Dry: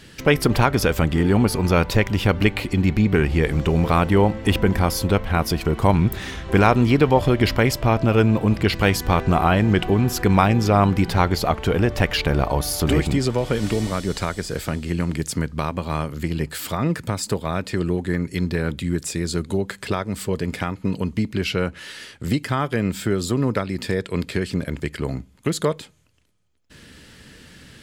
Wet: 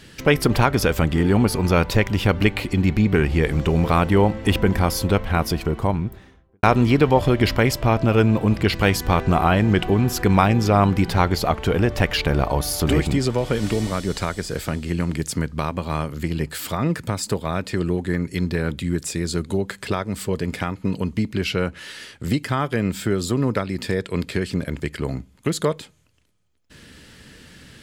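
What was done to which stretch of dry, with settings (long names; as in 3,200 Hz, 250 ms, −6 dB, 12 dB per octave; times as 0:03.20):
0:05.34–0:06.63: fade out and dull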